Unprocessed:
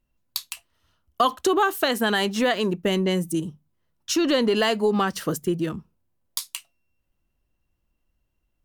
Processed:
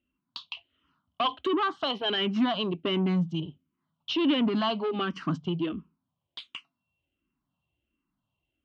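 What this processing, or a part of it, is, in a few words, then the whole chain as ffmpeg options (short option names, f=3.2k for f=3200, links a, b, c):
barber-pole phaser into a guitar amplifier: -filter_complex "[0:a]asplit=2[a][b];[b]afreqshift=-1.4[c];[a][c]amix=inputs=2:normalize=1,asoftclip=type=tanh:threshold=-23dB,highpass=92,equalizer=f=170:t=q:w=4:g=4,equalizer=f=270:t=q:w=4:g=7,equalizer=f=490:t=q:w=4:g=-7,equalizer=f=1.1k:t=q:w=4:g=5,equalizer=f=1.8k:t=q:w=4:g=-7,equalizer=f=3.1k:t=q:w=4:g=8,lowpass=f=3.7k:w=0.5412,lowpass=f=3.7k:w=1.3066"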